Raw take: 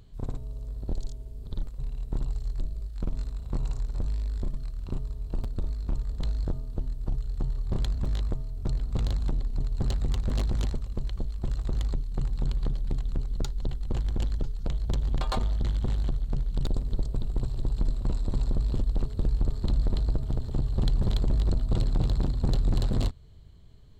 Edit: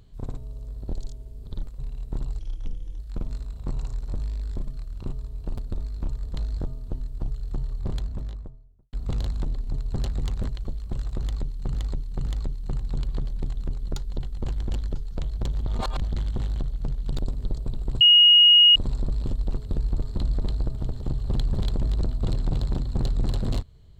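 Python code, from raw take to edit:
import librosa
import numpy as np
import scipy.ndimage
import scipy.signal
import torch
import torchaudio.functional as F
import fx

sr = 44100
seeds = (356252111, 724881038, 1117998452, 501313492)

y = fx.studio_fade_out(x, sr, start_s=7.56, length_s=1.23)
y = fx.edit(y, sr, fx.speed_span(start_s=2.39, length_s=0.46, speed=0.77),
    fx.cut(start_s=10.35, length_s=0.66),
    fx.repeat(start_s=11.74, length_s=0.52, count=3),
    fx.reverse_span(start_s=15.15, length_s=0.36),
    fx.bleep(start_s=17.49, length_s=0.75, hz=2880.0, db=-10.5), tone=tone)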